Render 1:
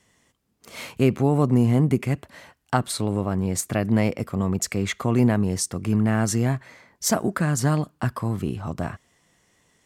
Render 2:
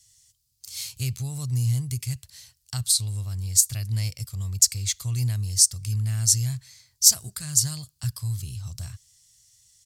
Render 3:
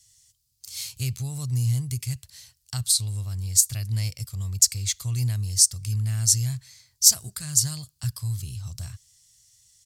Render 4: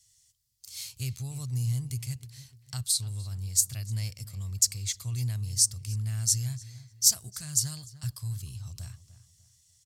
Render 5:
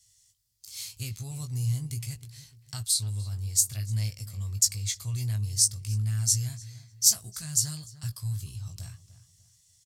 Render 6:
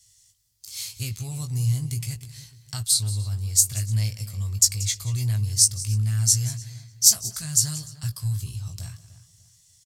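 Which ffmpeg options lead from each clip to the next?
-af "firequalizer=gain_entry='entry(120,0);entry(170,-20);entry(270,-29);entry(4500,10)':delay=0.05:min_phase=1"
-af anull
-filter_complex "[0:a]asplit=2[s0][s1];[s1]adelay=298,lowpass=f=2200:p=1,volume=0.188,asplit=2[s2][s3];[s3]adelay=298,lowpass=f=2200:p=1,volume=0.36,asplit=2[s4][s5];[s5]adelay=298,lowpass=f=2200:p=1,volume=0.36[s6];[s0][s2][s4][s6]amix=inputs=4:normalize=0,volume=0.531"
-filter_complex "[0:a]asplit=2[s0][s1];[s1]adelay=19,volume=0.501[s2];[s0][s2]amix=inputs=2:normalize=0"
-af "aecho=1:1:182:0.141,volume=1.78"

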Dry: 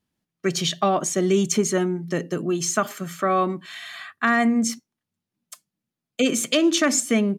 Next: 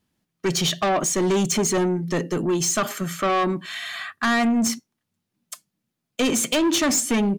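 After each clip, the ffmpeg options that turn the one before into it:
-af "asoftclip=type=tanh:threshold=0.075,volume=1.88"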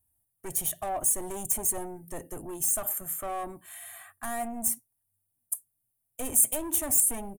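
-af "firequalizer=gain_entry='entry(100,0);entry(170,-23);entry(280,-16);entry(420,-18);entry(710,-7);entry(1200,-18);entry(1800,-18);entry(4700,-27);entry(9300,10)':delay=0.05:min_phase=1"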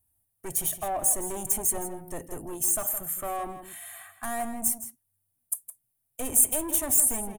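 -filter_complex "[0:a]asplit=2[s0][s1];[s1]adelay=163.3,volume=0.316,highshelf=f=4000:g=-3.67[s2];[s0][s2]amix=inputs=2:normalize=0,volume=1.19"

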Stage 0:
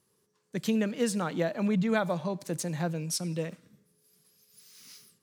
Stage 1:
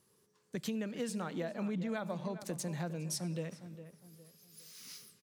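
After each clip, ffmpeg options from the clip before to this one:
-filter_complex "[0:a]acompressor=threshold=0.0112:ratio=3,asplit=2[s0][s1];[s1]adelay=408,lowpass=f=2200:p=1,volume=0.251,asplit=2[s2][s3];[s3]adelay=408,lowpass=f=2200:p=1,volume=0.36,asplit=2[s4][s5];[s5]adelay=408,lowpass=f=2200:p=1,volume=0.36,asplit=2[s6][s7];[s7]adelay=408,lowpass=f=2200:p=1,volume=0.36[s8];[s0][s2][s4][s6][s8]amix=inputs=5:normalize=0,volume=1.12"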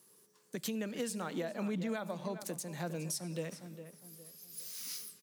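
-af "highpass=180,highshelf=f=7800:g=10.5,alimiter=level_in=2:limit=0.0631:level=0:latency=1:release=317,volume=0.501,volume=1.41"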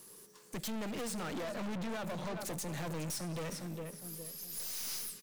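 -af "aeval=exprs='(tanh(251*val(0)+0.35)-tanh(0.35))/251':c=same,volume=3.35"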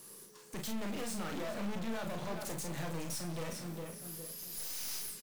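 -filter_complex "[0:a]asplit=2[s0][s1];[s1]aeval=exprs='(mod(150*val(0)+1,2)-1)/150':c=same,volume=0.398[s2];[s0][s2]amix=inputs=2:normalize=0,aecho=1:1:35|49:0.531|0.316,volume=0.794"

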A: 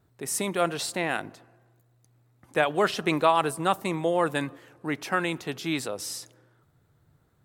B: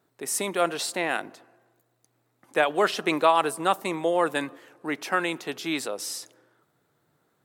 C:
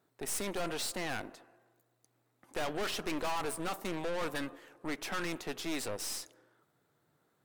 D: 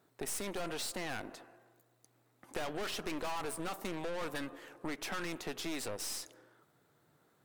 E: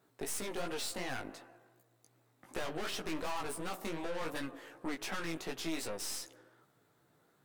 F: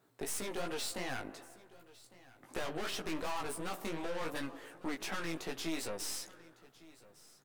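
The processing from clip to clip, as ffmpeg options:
-af "highpass=260,volume=1.19"
-af "aeval=exprs='(tanh(44.7*val(0)+0.75)-tanh(0.75))/44.7':c=same"
-af "acompressor=threshold=0.00891:ratio=3,volume=1.58"
-af "flanger=delay=15:depth=4.1:speed=2.7,volume=1.41"
-af "aecho=1:1:1155:0.0891"

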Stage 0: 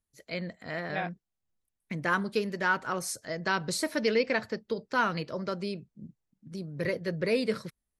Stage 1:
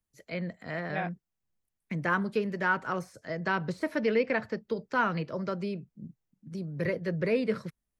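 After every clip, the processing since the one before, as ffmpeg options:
-filter_complex "[0:a]deesser=0.8,equalizer=f=160:t=o:w=0.67:g=3,equalizer=f=4000:t=o:w=0.67:g=-4,equalizer=f=10000:t=o:w=0.67:g=-4,acrossover=split=120|520|3500[s0][s1][s2][s3];[s3]acompressor=threshold=0.00158:ratio=6[s4];[s0][s1][s2][s4]amix=inputs=4:normalize=0"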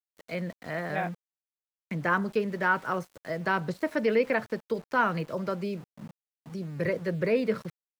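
-af "aeval=exprs='val(0)*gte(abs(val(0)),0.00422)':c=same,equalizer=f=770:t=o:w=2.2:g=3"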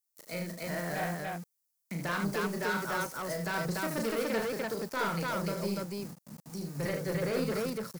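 -filter_complex "[0:a]acrossover=split=2700[s0][s1];[s1]aexciter=amount=4.9:drive=5:freq=4500[s2];[s0][s2]amix=inputs=2:normalize=0,asoftclip=type=tanh:threshold=0.0473,aecho=1:1:34.99|75.8|291.5:0.562|0.501|0.891,volume=0.668"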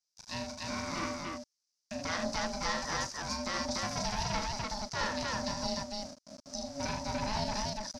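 -af "lowpass=f=5400:t=q:w=6.4,aeval=exprs='val(0)*sin(2*PI*420*n/s)':c=same"

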